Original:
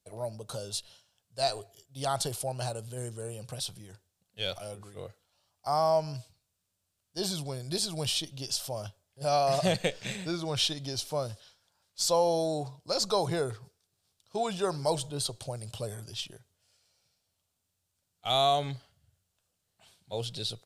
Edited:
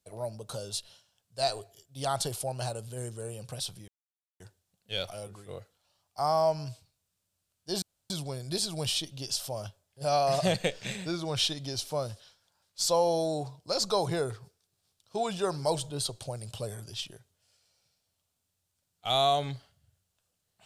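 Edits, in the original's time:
3.88 s: insert silence 0.52 s
7.30 s: insert room tone 0.28 s

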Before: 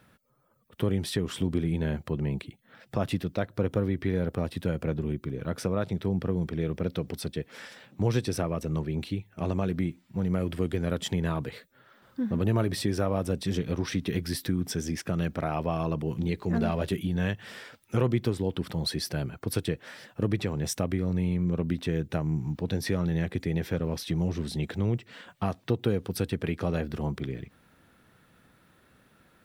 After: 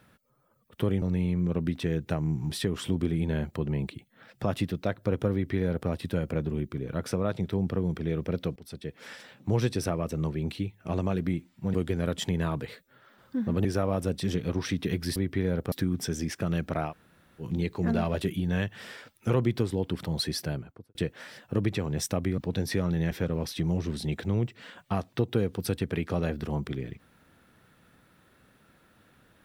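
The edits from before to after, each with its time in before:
3.85–4.41 s: copy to 14.39 s
7.08–7.63 s: fade in linear, from -17.5 dB
10.26–10.58 s: delete
12.49–12.88 s: delete
15.56–16.10 s: room tone, crossfade 0.10 s
19.06–19.62 s: studio fade out
21.05–22.53 s: move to 1.02 s
23.26–23.62 s: delete

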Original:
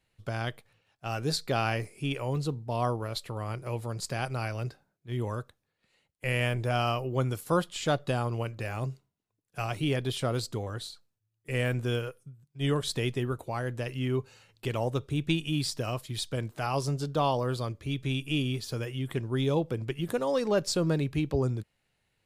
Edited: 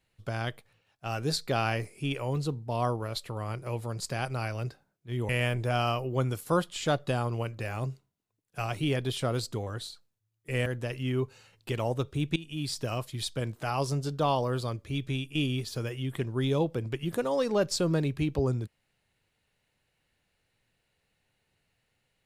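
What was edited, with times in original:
5.29–6.29 s: delete
11.66–13.62 s: delete
15.32–15.79 s: fade in, from -17 dB
18.05–18.31 s: fade out, to -8.5 dB

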